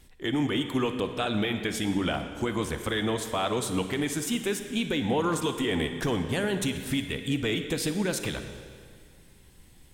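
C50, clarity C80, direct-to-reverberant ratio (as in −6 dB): 7.5 dB, 9.0 dB, 7.5 dB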